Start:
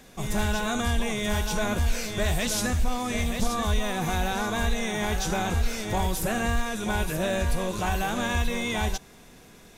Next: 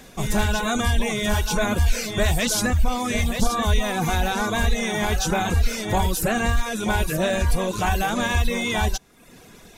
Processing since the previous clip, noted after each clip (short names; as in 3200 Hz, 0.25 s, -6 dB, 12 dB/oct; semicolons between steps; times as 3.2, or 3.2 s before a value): reverb removal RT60 0.74 s; gain +6 dB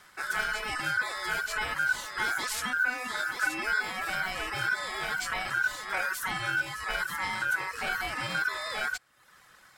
ring modulator 1500 Hz; gain -7.5 dB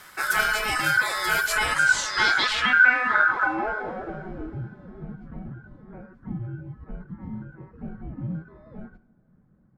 low-pass sweep 14000 Hz -> 210 Hz, 1.42–4.65; two-slope reverb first 0.51 s, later 3.8 s, from -17 dB, DRR 12 dB; gain +7.5 dB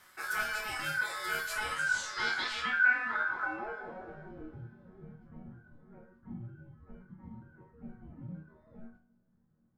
resonator bank D#2 minor, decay 0.32 s